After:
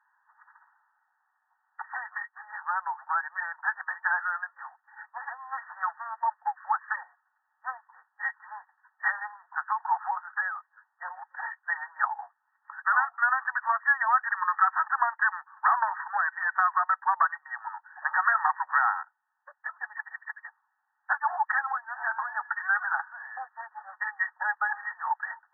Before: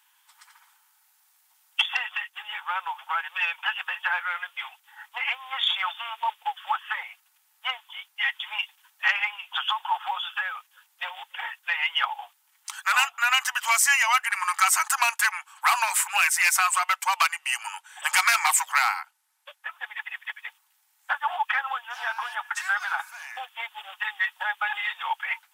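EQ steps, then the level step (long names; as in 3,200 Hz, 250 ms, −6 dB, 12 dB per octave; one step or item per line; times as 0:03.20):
high-pass filter 670 Hz 24 dB per octave
linear-phase brick-wall low-pass 1,900 Hz
0.0 dB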